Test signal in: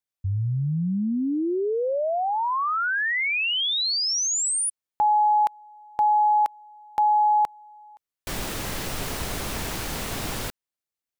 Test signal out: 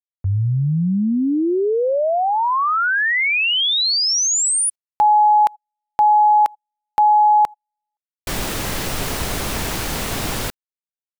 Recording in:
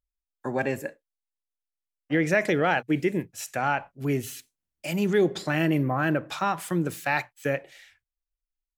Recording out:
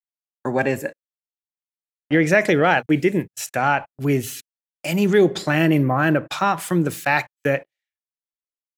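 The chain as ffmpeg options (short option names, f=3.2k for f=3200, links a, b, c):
-af "agate=range=-42dB:threshold=-43dB:ratio=16:release=59:detection=rms,volume=6.5dB"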